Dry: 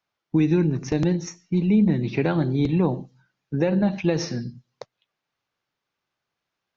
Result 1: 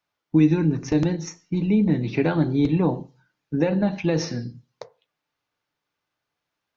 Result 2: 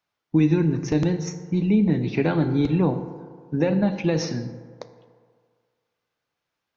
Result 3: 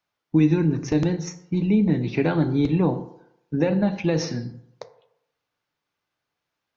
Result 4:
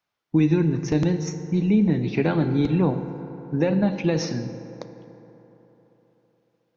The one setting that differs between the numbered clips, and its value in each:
FDN reverb, RT60: 0.31, 1.9, 0.8, 3.9 s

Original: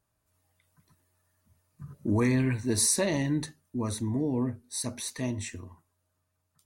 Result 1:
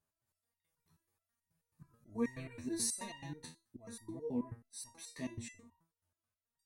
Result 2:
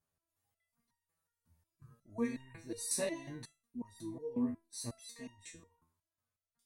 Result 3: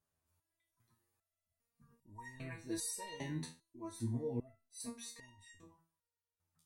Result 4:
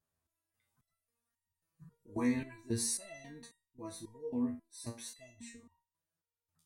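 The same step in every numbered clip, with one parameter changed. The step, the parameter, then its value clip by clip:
stepped resonator, rate: 9.3, 5.5, 2.5, 3.7 Hz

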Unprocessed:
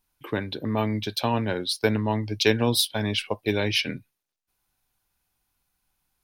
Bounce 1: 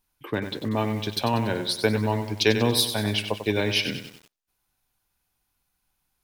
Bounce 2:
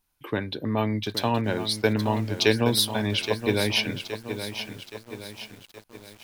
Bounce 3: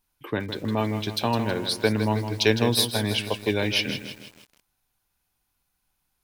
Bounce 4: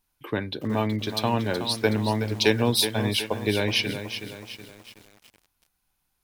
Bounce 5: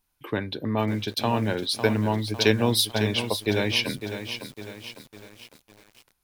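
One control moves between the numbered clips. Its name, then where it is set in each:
lo-fi delay, time: 95, 821, 160, 372, 553 ms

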